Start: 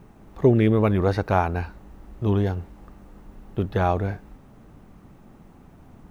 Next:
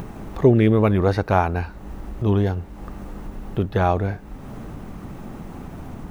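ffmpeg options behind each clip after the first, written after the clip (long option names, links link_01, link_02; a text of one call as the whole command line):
ffmpeg -i in.wav -af "acompressor=mode=upward:threshold=-25dB:ratio=2.5,volume=2.5dB" out.wav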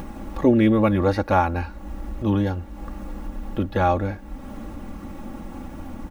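ffmpeg -i in.wav -af "aecho=1:1:3.6:0.78,volume=-2dB" out.wav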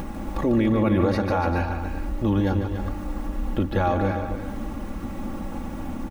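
ffmpeg -i in.wav -af "alimiter=limit=-16.5dB:level=0:latency=1:release=96,aecho=1:1:147|287|395:0.376|0.335|0.224,volume=2.5dB" out.wav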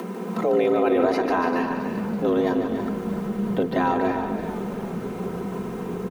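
ffmpeg -i in.wav -filter_complex "[0:a]afreqshift=170,asplit=8[link_01][link_02][link_03][link_04][link_05][link_06][link_07][link_08];[link_02]adelay=333,afreqshift=-48,volume=-13.5dB[link_09];[link_03]adelay=666,afreqshift=-96,volume=-17.7dB[link_10];[link_04]adelay=999,afreqshift=-144,volume=-21.8dB[link_11];[link_05]adelay=1332,afreqshift=-192,volume=-26dB[link_12];[link_06]adelay=1665,afreqshift=-240,volume=-30.1dB[link_13];[link_07]adelay=1998,afreqshift=-288,volume=-34.3dB[link_14];[link_08]adelay=2331,afreqshift=-336,volume=-38.4dB[link_15];[link_01][link_09][link_10][link_11][link_12][link_13][link_14][link_15]amix=inputs=8:normalize=0" out.wav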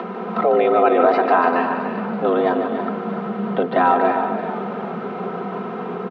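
ffmpeg -i in.wav -af "highpass=frequency=170:width=0.5412,highpass=frequency=170:width=1.3066,equalizer=frequency=180:width_type=q:width=4:gain=-3,equalizer=frequency=300:width_type=q:width=4:gain=-8,equalizer=frequency=720:width_type=q:width=4:gain=7,equalizer=frequency=1300:width_type=q:width=4:gain=8,lowpass=frequency=3700:width=0.5412,lowpass=frequency=3700:width=1.3066,volume=4dB" out.wav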